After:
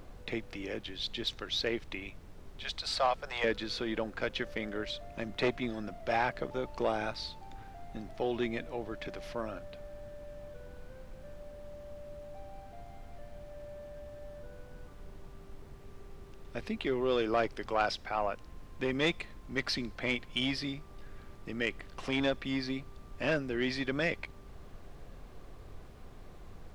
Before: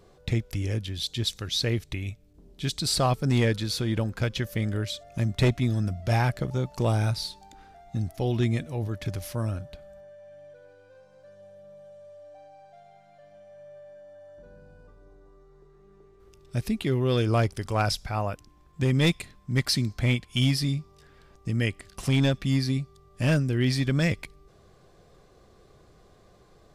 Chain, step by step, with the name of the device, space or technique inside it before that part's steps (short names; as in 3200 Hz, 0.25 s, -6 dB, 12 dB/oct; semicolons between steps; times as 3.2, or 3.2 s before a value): 2.63–3.44 steep high-pass 540 Hz 36 dB/oct; HPF 120 Hz; aircraft cabin announcement (BPF 360–3200 Hz; soft clip -19 dBFS, distortion -18 dB; brown noise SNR 10 dB)